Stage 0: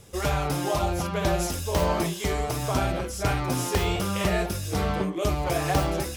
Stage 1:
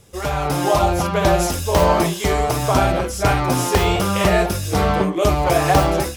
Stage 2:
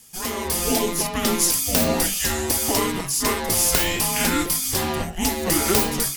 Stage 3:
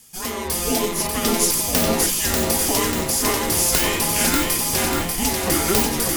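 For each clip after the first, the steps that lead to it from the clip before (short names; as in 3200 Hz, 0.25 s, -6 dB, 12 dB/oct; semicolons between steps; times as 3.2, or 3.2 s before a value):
dynamic EQ 830 Hz, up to +4 dB, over -35 dBFS, Q 0.73; AGC gain up to 8 dB
RIAA curve recording; frequency shift -360 Hz; gain -4.5 dB
lo-fi delay 0.591 s, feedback 55%, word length 7-bit, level -3.5 dB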